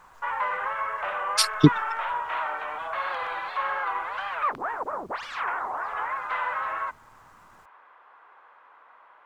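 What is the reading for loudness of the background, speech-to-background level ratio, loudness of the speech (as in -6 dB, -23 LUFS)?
-29.5 LUFS, 7.5 dB, -22.0 LUFS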